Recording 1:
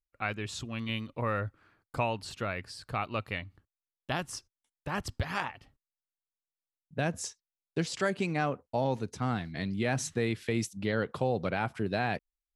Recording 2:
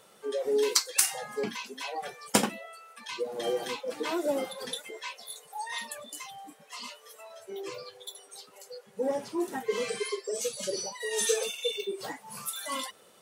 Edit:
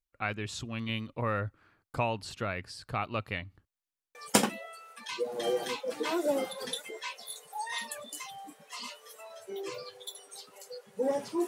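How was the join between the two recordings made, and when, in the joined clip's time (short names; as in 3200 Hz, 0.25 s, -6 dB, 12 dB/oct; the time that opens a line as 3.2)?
recording 1
3.85 stutter in place 0.06 s, 5 plays
4.15 switch to recording 2 from 2.15 s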